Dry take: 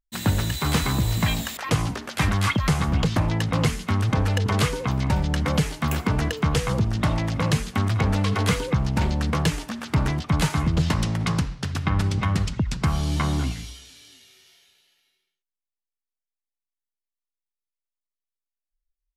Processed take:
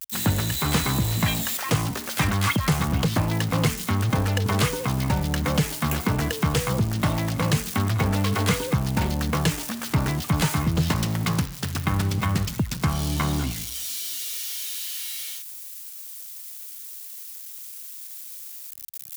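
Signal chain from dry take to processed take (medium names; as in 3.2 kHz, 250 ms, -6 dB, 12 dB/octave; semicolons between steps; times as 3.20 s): zero-crossing glitches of -24.5 dBFS; high-pass 76 Hz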